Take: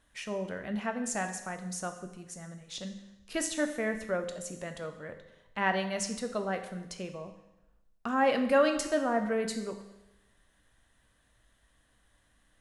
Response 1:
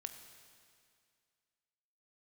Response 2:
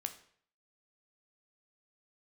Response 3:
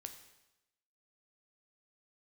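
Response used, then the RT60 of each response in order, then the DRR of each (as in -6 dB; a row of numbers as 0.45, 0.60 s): 3; 2.2, 0.55, 0.95 s; 7.0, 7.0, 6.0 dB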